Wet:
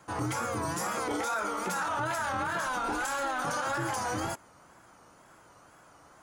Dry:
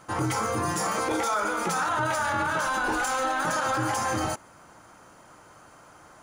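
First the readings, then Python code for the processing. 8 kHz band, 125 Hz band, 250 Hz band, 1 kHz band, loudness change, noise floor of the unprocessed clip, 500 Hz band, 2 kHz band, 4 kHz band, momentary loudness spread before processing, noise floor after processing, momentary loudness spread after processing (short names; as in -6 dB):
-5.0 dB, -5.0 dB, -5.0 dB, -5.0 dB, -5.0 dB, -53 dBFS, -5.0 dB, -5.5 dB, -5.0 dB, 2 LU, -58 dBFS, 2 LU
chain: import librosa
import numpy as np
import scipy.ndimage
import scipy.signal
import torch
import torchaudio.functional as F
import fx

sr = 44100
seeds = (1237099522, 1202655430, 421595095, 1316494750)

y = fx.wow_flutter(x, sr, seeds[0], rate_hz=2.1, depth_cents=120.0)
y = y * 10.0 ** (-5.0 / 20.0)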